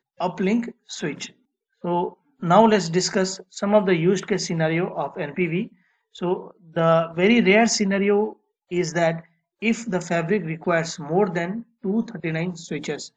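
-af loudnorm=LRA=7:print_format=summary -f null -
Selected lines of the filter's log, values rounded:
Input Integrated:    -22.9 LUFS
Input True Peak:      -1.5 dBTP
Input LRA:             4.6 LU
Input Threshold:     -33.2 LUFS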